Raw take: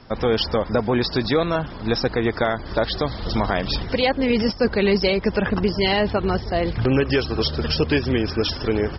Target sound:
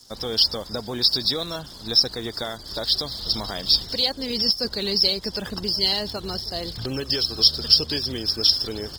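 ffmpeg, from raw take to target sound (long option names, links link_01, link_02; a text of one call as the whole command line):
ffmpeg -i in.wav -af "aeval=exprs='sgn(val(0))*max(abs(val(0))-0.00266,0)':channel_layout=same,aexciter=amount=13.6:drive=5.4:freq=3700,volume=-10.5dB" out.wav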